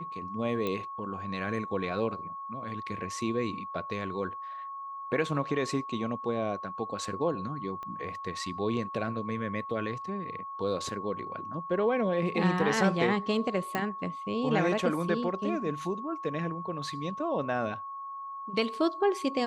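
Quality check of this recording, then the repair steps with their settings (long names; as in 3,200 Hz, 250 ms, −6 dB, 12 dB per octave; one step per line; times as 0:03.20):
whistle 1,100 Hz −37 dBFS
0:00.67: click −19 dBFS
0:07.83: click −28 dBFS
0:13.75: click −16 dBFS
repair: click removal
notch filter 1,100 Hz, Q 30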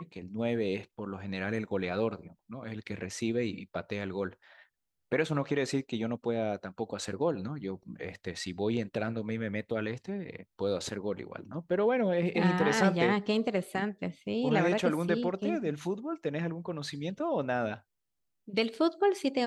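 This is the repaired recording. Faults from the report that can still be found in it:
0:07.83: click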